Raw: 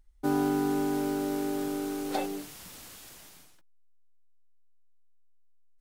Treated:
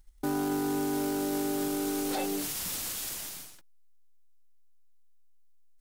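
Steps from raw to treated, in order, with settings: high shelf 3700 Hz +7.5 dB; sample leveller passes 1; limiter -27.5 dBFS, peak gain reduction 11 dB; gain +4 dB

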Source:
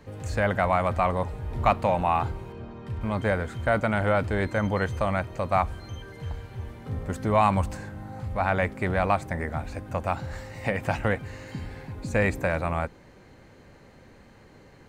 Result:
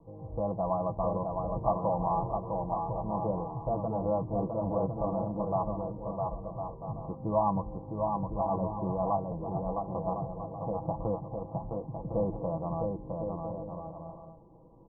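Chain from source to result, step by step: steep low-pass 1100 Hz 96 dB/oct; comb 6.1 ms, depth 71%; bouncing-ball echo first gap 0.66 s, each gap 0.6×, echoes 5; gain -7.5 dB

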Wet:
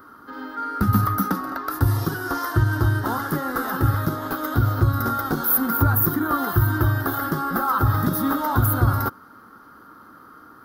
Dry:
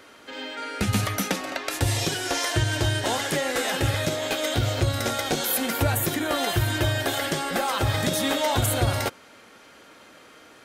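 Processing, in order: EQ curve 300 Hz 0 dB, 600 Hz -14 dB, 1300 Hz +6 dB, 2400 Hz -27 dB, 4900 Hz -14 dB, 7600 Hz -25 dB, 15000 Hz +8 dB; gain +5.5 dB

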